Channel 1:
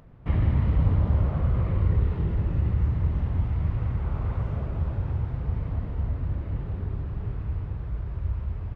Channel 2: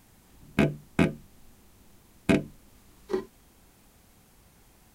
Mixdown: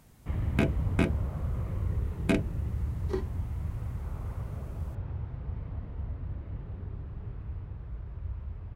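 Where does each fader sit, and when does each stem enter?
−8.5, −4.0 decibels; 0.00, 0.00 seconds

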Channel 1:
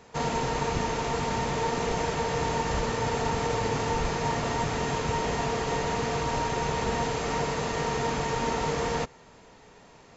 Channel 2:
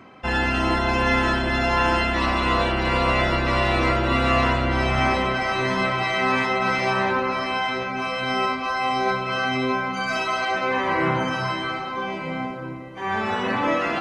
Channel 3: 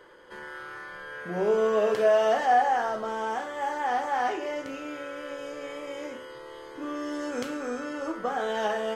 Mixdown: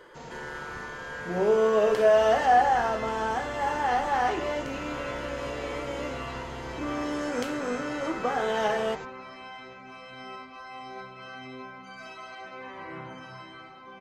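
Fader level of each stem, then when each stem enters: −15.5, −18.5, +1.5 decibels; 0.00, 1.90, 0.00 seconds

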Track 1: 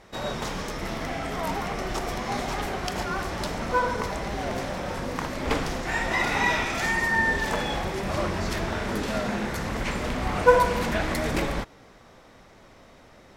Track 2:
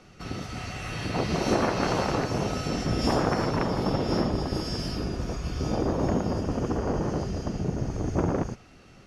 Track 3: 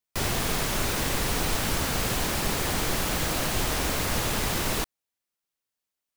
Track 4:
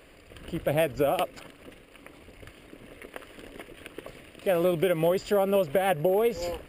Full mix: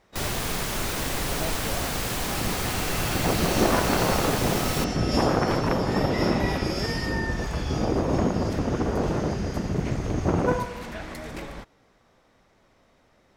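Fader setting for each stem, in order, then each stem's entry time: −10.0, +2.0, −1.5, −12.0 decibels; 0.00, 2.10, 0.00, 0.65 seconds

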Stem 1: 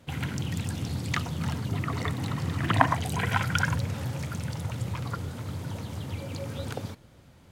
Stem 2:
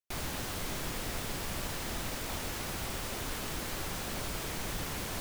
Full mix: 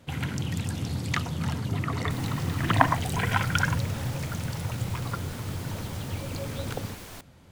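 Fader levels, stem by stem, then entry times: +1.0, −5.5 decibels; 0.00, 2.00 seconds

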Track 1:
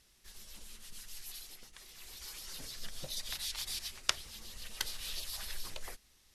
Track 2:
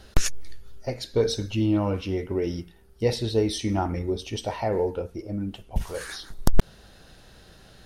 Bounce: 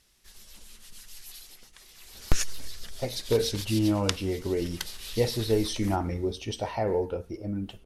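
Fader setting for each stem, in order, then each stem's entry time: +1.5, −2.0 decibels; 0.00, 2.15 seconds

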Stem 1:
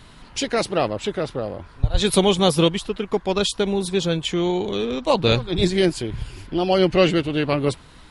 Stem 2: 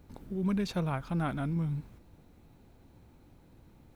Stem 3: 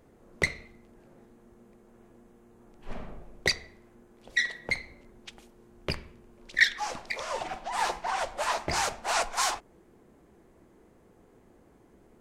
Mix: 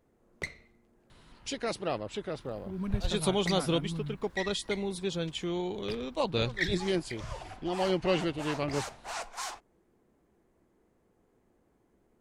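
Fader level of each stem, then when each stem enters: −11.5, −5.5, −10.5 decibels; 1.10, 2.35, 0.00 seconds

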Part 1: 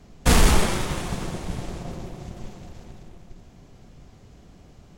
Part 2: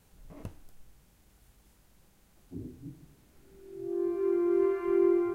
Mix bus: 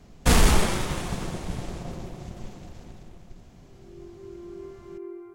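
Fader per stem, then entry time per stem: −1.5, −14.5 decibels; 0.00, 0.00 seconds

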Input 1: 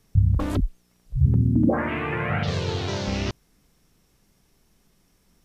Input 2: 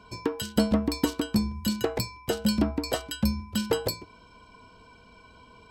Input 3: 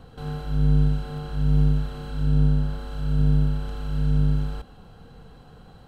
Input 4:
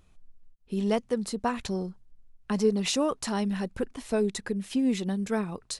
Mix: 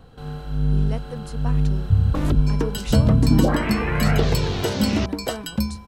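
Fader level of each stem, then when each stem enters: +1.5, +2.0, −1.0, −7.0 decibels; 1.75, 2.35, 0.00, 0.00 seconds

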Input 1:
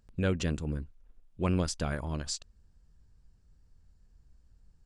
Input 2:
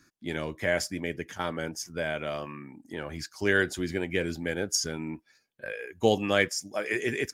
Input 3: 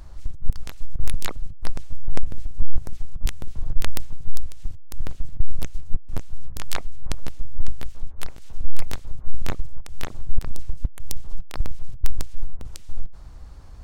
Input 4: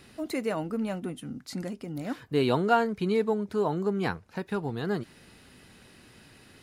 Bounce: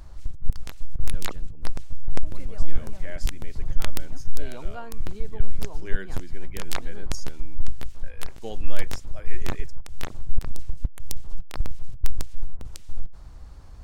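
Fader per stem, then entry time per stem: −18.0, −14.0, −1.5, −17.0 decibels; 0.90, 2.40, 0.00, 2.05 seconds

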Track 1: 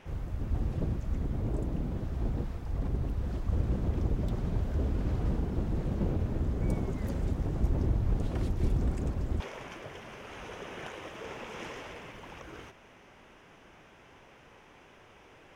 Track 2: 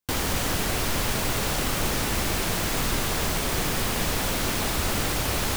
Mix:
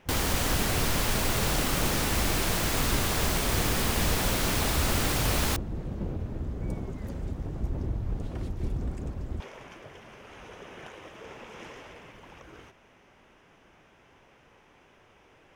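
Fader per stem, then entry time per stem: −3.0, −1.5 decibels; 0.00, 0.00 seconds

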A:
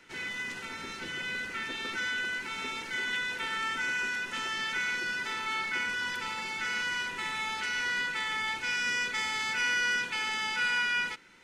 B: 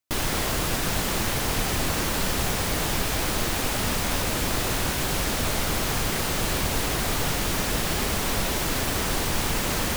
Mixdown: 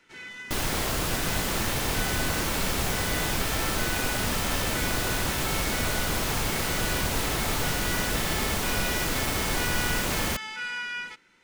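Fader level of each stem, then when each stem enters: −4.5, −2.0 decibels; 0.00, 0.40 seconds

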